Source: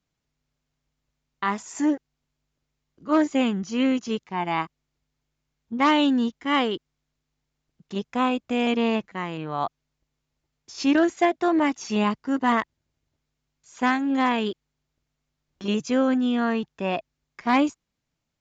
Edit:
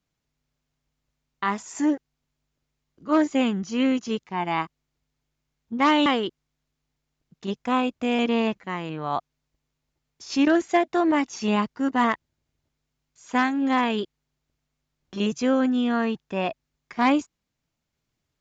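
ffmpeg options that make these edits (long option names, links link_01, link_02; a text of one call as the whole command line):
ffmpeg -i in.wav -filter_complex "[0:a]asplit=2[link_01][link_02];[link_01]atrim=end=6.062[link_03];[link_02]atrim=start=6.538[link_04];[link_03][link_04]acrossfade=duration=0.004:curve1=hsin:curve2=hsin" out.wav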